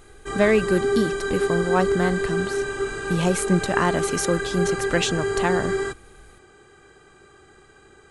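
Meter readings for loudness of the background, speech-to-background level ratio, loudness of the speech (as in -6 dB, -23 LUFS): -25.5 LUFS, 1.0 dB, -24.5 LUFS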